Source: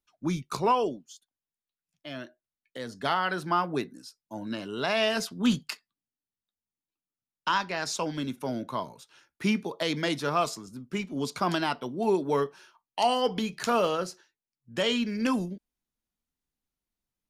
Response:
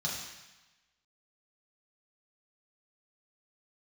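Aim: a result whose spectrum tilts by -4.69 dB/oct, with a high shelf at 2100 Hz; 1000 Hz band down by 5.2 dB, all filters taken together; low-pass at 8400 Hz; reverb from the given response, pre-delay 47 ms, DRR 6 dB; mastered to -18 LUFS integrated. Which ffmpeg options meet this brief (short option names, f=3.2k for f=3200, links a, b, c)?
-filter_complex "[0:a]lowpass=8.4k,equalizer=f=1k:t=o:g=-5.5,highshelf=f=2.1k:g=-5.5,asplit=2[a][b];[1:a]atrim=start_sample=2205,adelay=47[c];[b][c]afir=irnorm=-1:irlink=0,volume=-10.5dB[d];[a][d]amix=inputs=2:normalize=0,volume=12.5dB"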